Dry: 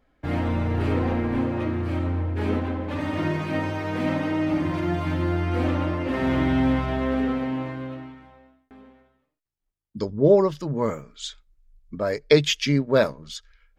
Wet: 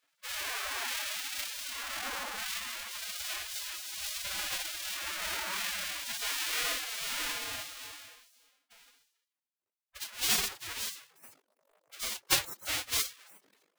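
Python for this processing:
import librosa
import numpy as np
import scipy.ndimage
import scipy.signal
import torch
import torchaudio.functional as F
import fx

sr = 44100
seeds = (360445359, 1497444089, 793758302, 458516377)

y = fx.halfwave_hold(x, sr)
y = fx.spec_gate(y, sr, threshold_db=-25, keep='weak')
y = fx.pitch_keep_formants(y, sr, semitones=6.5)
y = y * librosa.db_to_amplitude(-3.0)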